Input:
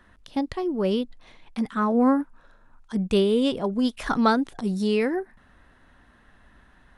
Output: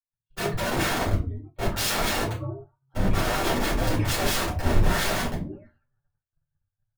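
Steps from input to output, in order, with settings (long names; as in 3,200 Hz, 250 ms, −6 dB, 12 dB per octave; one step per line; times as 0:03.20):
hum removal 124.8 Hz, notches 30
brickwall limiter −18.5 dBFS, peak gain reduction 9.5 dB
echo through a band-pass that steps 208 ms, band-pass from 240 Hz, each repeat 1.4 octaves, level −9.5 dB
frequency shifter −150 Hz
multi-voice chorus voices 6, 0.91 Hz, delay 10 ms, depth 3.2 ms
dynamic equaliser 960 Hz, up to +5 dB, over −43 dBFS, Q 1
gate on every frequency bin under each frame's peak −20 dB strong
high-shelf EQ 2,200 Hz −9 dB
wrap-around overflow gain 30.5 dB
rectangular room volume 150 cubic metres, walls furnished, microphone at 4.5 metres
downward expander −31 dBFS
multiband upward and downward expander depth 70%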